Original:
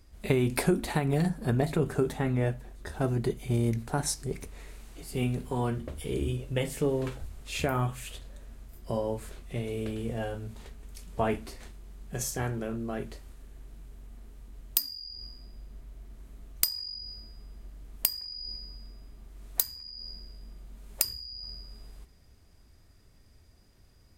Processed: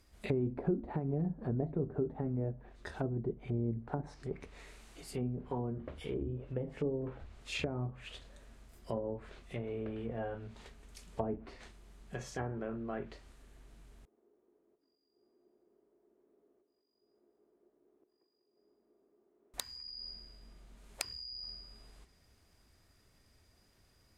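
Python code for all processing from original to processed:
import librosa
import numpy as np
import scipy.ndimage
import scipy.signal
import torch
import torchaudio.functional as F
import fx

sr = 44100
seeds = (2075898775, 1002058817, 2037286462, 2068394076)

y = fx.chain(x, sr, fx.over_compress(threshold_db=-41.0, ratio=-0.5),
    fx.ladder_bandpass(hz=410.0, resonance_pct=65),
    fx.echo_feedback(ms=196, feedback_pct=47, wet_db=-9.0), at=(14.05, 19.54))
y = fx.high_shelf(y, sr, hz=3600.0, db=-8.0)
y = fx.env_lowpass_down(y, sr, base_hz=430.0, full_db=-25.5)
y = fx.tilt_eq(y, sr, slope=2.0)
y = y * librosa.db_to_amplitude(-2.0)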